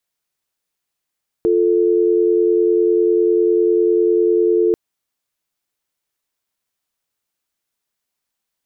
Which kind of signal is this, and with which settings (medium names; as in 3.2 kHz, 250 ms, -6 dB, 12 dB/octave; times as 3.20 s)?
call progress tone dial tone, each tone -14.5 dBFS 3.29 s